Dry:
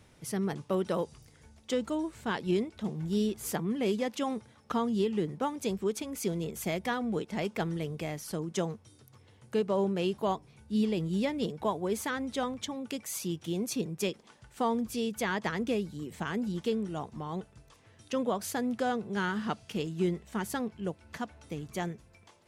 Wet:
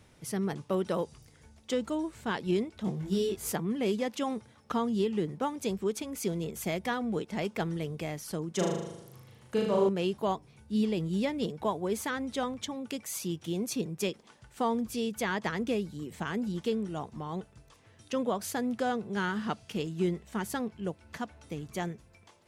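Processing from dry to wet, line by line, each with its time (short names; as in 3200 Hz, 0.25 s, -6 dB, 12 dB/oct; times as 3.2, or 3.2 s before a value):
2.85–3.52 doubler 21 ms -2 dB
8.55–9.89 flutter echo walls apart 6.6 m, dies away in 0.88 s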